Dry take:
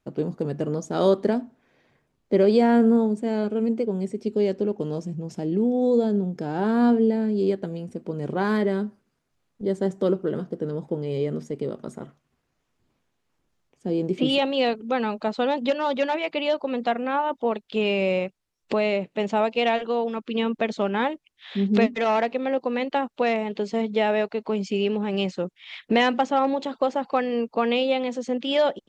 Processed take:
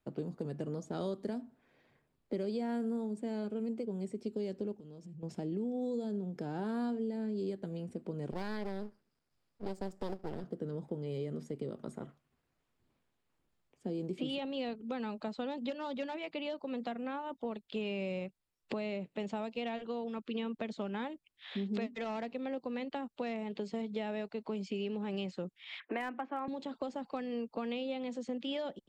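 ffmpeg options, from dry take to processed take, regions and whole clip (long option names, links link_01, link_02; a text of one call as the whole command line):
ffmpeg -i in.wav -filter_complex "[0:a]asettb=1/sr,asplit=3[link_01][link_02][link_03];[link_01]atrim=end=4.744[link_04];[link_02]atrim=start=4.74:end=5.23,asetpts=PTS-STARTPTS,afade=type=in:duration=0.004:curve=qsin,afade=type=out:start_time=0.486:duration=0.004:curve=qsin,equalizer=frequency=860:width_type=o:width=1.7:gain=-7.5,acompressor=threshold=-40dB:ratio=8:attack=3.2:release=140:knee=1:detection=peak[link_05];[link_03]atrim=start=5.226[link_06];[link_04][link_05]acrossfade=duration=0.004:curve1=hsin:curve2=qsin[link_07];[link_07][link_06]acrossfade=duration=0.004:curve1=qsin:curve2=hsin,asettb=1/sr,asplit=3[link_08][link_09][link_10];[link_08]atrim=end=8.314[link_11];[link_09]atrim=start=8.31:end=10.44,asetpts=PTS-STARTPTS,afade=type=in:duration=0.004:curve=qsin,afade=type=out:start_time=2.126:duration=0.004:curve=qsin,aeval=exprs='max(val(0),0)':channel_layout=same,equalizer=frequency=5000:width=4:gain=8.5[link_12];[link_10]atrim=start=10.436[link_13];[link_11][link_12]acrossfade=duration=0.004:curve1=hsin:curve2=qsin[link_14];[link_14][link_13]acrossfade=duration=0.004:curve1=qsin:curve2=hsin,asettb=1/sr,asplit=3[link_15][link_16][link_17];[link_15]atrim=end=25.804[link_18];[link_16]atrim=start=25.8:end=26.48,asetpts=PTS-STARTPTS,afade=type=in:duration=0.004:curve=qsin,afade=type=out:start_time=0.676:duration=0.004:curve=qsin,highpass=frequency=310:width=0.5412,highpass=frequency=310:width=1.3066,equalizer=frequency=330:width_type=q:width=4:gain=4,equalizer=frequency=480:width_type=q:width=4:gain=-4,equalizer=frequency=730:width_type=q:width=4:gain=4,equalizer=frequency=1100:width_type=q:width=4:gain=8,equalizer=frequency=1600:width_type=q:width=4:gain=8,equalizer=frequency=2300:width_type=q:width=4:gain=5,lowpass=frequency=2500:width=0.5412,lowpass=frequency=2500:width=1.3066,asoftclip=type=hard:threshold=-7.5dB[link_19];[link_17]atrim=start=26.476[link_20];[link_18][link_19]acrossfade=duration=0.004:curve1=hsin:curve2=qsin[link_21];[link_21][link_20]acrossfade=duration=0.004:curve1=qsin:curve2=hsin,equalizer=frequency=6100:width_type=o:width=0.32:gain=-6,acrossover=split=260|4600[link_22][link_23][link_24];[link_22]acompressor=threshold=-34dB:ratio=4[link_25];[link_23]acompressor=threshold=-34dB:ratio=4[link_26];[link_24]acompressor=threshold=-52dB:ratio=4[link_27];[link_25][link_26][link_27]amix=inputs=3:normalize=0,volume=-6dB" out.wav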